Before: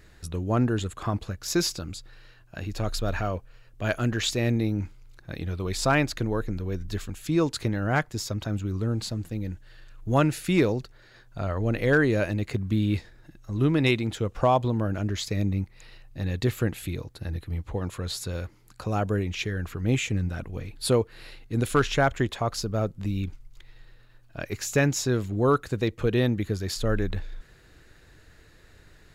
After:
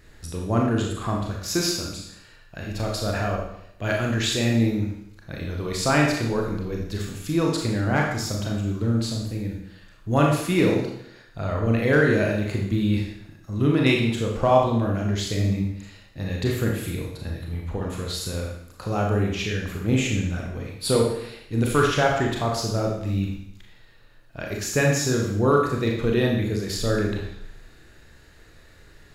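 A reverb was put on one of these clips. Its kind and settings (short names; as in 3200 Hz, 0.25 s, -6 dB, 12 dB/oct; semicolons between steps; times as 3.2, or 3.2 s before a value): Schroeder reverb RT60 0.74 s, combs from 27 ms, DRR -1 dB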